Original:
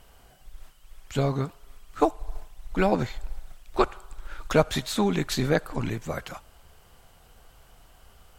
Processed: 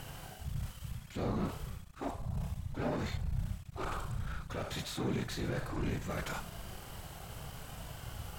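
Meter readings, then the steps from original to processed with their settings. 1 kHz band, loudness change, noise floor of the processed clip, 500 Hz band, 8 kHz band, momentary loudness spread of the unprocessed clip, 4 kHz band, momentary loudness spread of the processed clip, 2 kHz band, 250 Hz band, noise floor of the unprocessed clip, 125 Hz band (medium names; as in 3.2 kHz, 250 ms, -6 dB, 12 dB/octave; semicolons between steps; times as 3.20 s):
-12.0 dB, -12.5 dB, -50 dBFS, -14.0 dB, -8.0 dB, 20 LU, -9.0 dB, 11 LU, -9.5 dB, -10.0 dB, -56 dBFS, -5.5 dB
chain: reverse; compression 8:1, threshold -37 dBFS, peak gain reduction 21.5 dB; reverse; waveshaping leveller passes 3; whisper effect; harmonic-percussive split percussive -13 dB; trim +1.5 dB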